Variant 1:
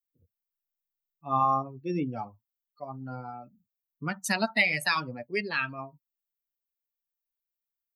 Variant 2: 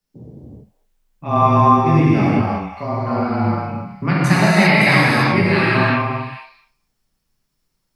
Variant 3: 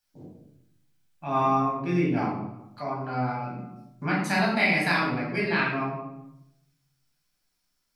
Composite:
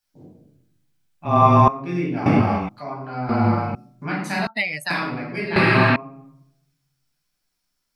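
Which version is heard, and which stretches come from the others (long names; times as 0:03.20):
3
0:01.25–0:01.68: punch in from 2
0:02.26–0:02.69: punch in from 2
0:03.29–0:03.75: punch in from 2
0:04.47–0:04.90: punch in from 1
0:05.56–0:05.96: punch in from 2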